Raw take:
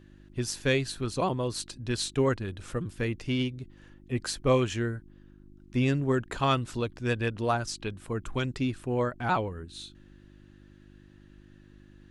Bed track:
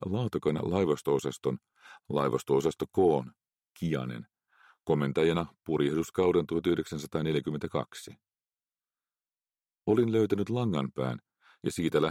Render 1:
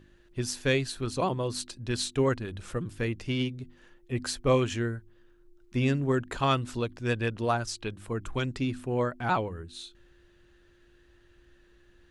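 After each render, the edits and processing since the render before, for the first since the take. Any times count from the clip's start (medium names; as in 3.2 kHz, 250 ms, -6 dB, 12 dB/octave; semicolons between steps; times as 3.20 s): de-hum 50 Hz, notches 6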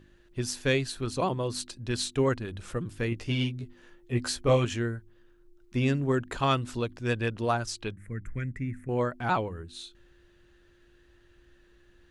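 3.10–4.65 s: doubling 17 ms -4 dB; 7.92–8.89 s: FFT filter 180 Hz 0 dB, 370 Hz -11 dB, 580 Hz -12 dB, 850 Hz -27 dB, 2 kHz +5 dB, 2.9 kHz -22 dB, 4.6 kHz -28 dB, 6.5 kHz -14 dB, 10 kHz -9 dB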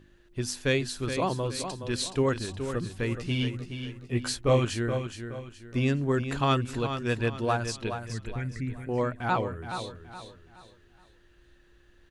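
feedback delay 421 ms, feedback 35%, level -8.5 dB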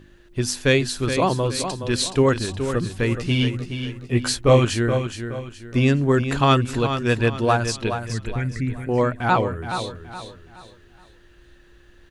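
trim +8 dB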